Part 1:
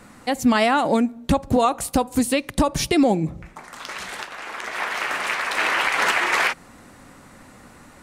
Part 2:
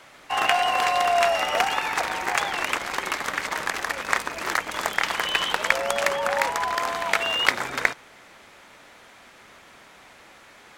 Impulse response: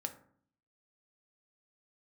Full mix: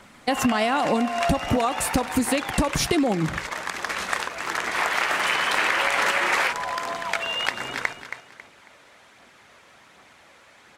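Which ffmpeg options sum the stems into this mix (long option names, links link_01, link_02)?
-filter_complex "[0:a]agate=range=-9dB:threshold=-33dB:ratio=16:detection=peak,volume=2.5dB[link_01];[1:a]highpass=64,aphaser=in_gain=1:out_gain=1:delay=2.2:decay=0.32:speed=1.3:type=triangular,lowpass=12000,volume=-3.5dB,asplit=2[link_02][link_03];[link_03]volume=-11dB,aecho=0:1:273|546|819|1092:1|0.31|0.0961|0.0298[link_04];[link_01][link_02][link_04]amix=inputs=3:normalize=0,acompressor=threshold=-18dB:ratio=10"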